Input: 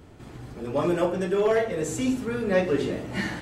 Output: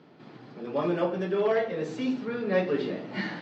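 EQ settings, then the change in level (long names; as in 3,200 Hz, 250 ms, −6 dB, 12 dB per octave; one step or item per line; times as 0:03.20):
elliptic band-pass filter 160–4,700 Hz, stop band 40 dB
−2.5 dB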